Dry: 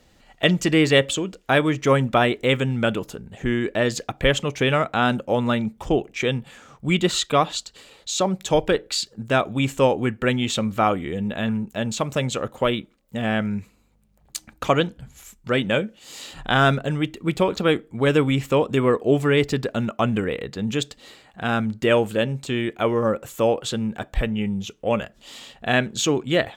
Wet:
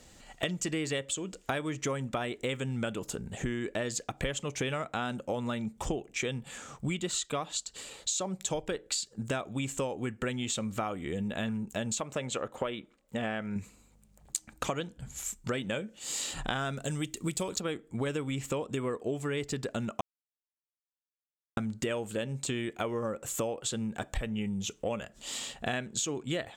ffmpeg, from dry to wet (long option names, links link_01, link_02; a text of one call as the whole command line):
ffmpeg -i in.wav -filter_complex "[0:a]asettb=1/sr,asplit=3[link_01][link_02][link_03];[link_01]atrim=end=12.004[link_04];[link_02]atrim=start=12:end=13.56,asetpts=PTS-STARTPTS,afade=type=in:duration=0.004:curve=qsin,afade=type=out:start_time=1.556:duration=0.004:curve=qsin,bass=frequency=250:gain=-7,treble=frequency=4000:gain=-10[link_05];[link_03]atrim=start=13.556[link_06];[link_04][link_05]acrossfade=duration=0.004:curve1=hsin:curve2=qsin[link_07];[link_07][link_06]acrossfade=duration=0.004:curve1=qsin:curve2=hsin,asettb=1/sr,asplit=3[link_08][link_09][link_10];[link_08]atrim=end=16.774[link_11];[link_09]atrim=start=16.77:end=17.6,asetpts=PTS-STARTPTS,afade=type=in:duration=0.004:curve=qsin,afade=type=out:start_time=0.826:duration=0.004:curve=qsin,bass=frequency=250:gain=2,treble=frequency=4000:gain=13[link_12];[link_10]atrim=start=17.596[link_13];[link_11][link_12]acrossfade=duration=0.004:curve1=hsin:curve2=qsin[link_14];[link_14][link_13]acrossfade=duration=0.004:curve1=qsin:curve2=hsin,asplit=3[link_15][link_16][link_17];[link_15]atrim=end=20.01,asetpts=PTS-STARTPTS,afade=type=out:start_time=20.006:duration=0.004:curve=hsin[link_18];[link_16]atrim=start=20.01:end=21.57,asetpts=PTS-STARTPTS,volume=0[link_19];[link_17]atrim=start=21.57,asetpts=PTS-STARTPTS,afade=type=in:duration=0.004:curve=hsin[link_20];[link_18][link_19][link_20]concat=n=3:v=0:a=1,equalizer=frequency=7700:width=1.5:gain=10.5,acompressor=threshold=-30dB:ratio=10" out.wav